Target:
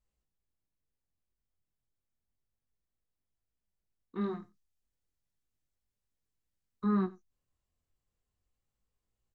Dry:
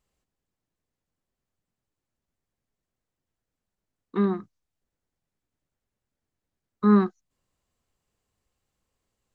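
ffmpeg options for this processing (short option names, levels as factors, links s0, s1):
-filter_complex "[0:a]asettb=1/sr,asplit=3[s0][s1][s2];[s0]atrim=end=4.214[s3];[s1]atrim=start=4.21:end=6.84,asetpts=PTS-STARTPTS,afade=t=in:d=0.004:c=qsin,afade=t=out:st=2.626:d=0.004:c=qsin,highshelf=f=2400:g=9[s4];[s2]atrim=start=6.836[s5];[s3][s4]acrossfade=d=0.004:c1=hsin:c2=qsin[s6];[s6][s5]acrossfade=d=0.004:c1=qsin:c2=hsin,flanger=delay=18.5:depth=5.9:speed=0.32,lowshelf=f=95:g=11.5,aecho=1:1:91:0.0891,volume=0.398"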